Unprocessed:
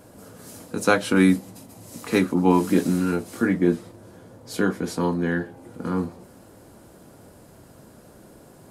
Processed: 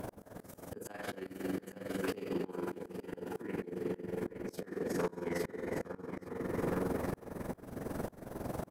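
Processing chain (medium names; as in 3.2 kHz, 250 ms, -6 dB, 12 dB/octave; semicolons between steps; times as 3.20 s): spectral sustain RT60 0.57 s; Schroeder reverb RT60 2.6 s, combs from 25 ms, DRR 2 dB; compression 4:1, threshold -33 dBFS, peak gain reduction 19.5 dB; on a send: feedback delay 846 ms, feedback 35%, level -7 dB; on the sum: harmonic-percussive split percussive +8 dB; tilt shelf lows +4.5 dB, about 1.2 kHz; formant shift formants +3 st; AM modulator 22 Hz, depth 60%; slow attack 520 ms; in parallel at -8 dB: sine folder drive 6 dB, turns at -23.5 dBFS; on the sum: trim -4.5 dB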